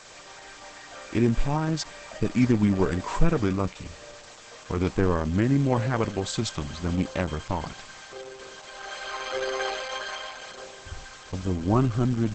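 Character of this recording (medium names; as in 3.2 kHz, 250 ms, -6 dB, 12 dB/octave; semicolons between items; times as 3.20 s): a quantiser's noise floor 8-bit, dither triangular; Opus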